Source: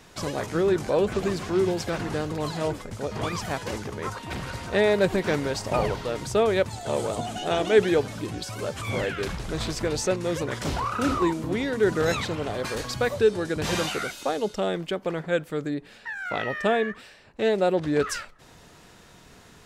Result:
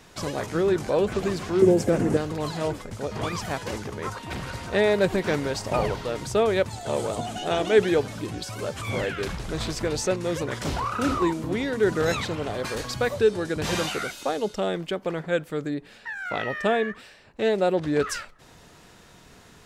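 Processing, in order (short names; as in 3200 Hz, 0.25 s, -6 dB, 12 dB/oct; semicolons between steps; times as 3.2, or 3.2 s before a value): 1.62–2.17 ten-band EQ 125 Hz +4 dB, 250 Hz +9 dB, 500 Hz +8 dB, 1000 Hz -4 dB, 4000 Hz -9 dB, 8000 Hz +6 dB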